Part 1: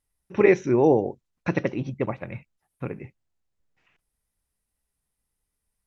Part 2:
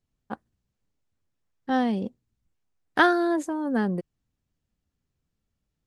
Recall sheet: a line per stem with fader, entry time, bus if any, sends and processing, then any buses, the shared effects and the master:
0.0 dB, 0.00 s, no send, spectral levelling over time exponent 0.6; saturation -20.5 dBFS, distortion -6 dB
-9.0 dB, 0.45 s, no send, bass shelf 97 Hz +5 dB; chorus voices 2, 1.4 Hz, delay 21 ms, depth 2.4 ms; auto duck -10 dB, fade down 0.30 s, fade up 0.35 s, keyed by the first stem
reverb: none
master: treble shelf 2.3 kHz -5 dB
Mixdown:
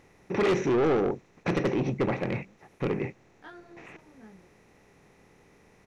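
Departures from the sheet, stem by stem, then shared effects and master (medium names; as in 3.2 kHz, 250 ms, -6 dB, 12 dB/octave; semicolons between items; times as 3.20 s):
stem 2 -9.0 dB -> -15.5 dB; master: missing treble shelf 2.3 kHz -5 dB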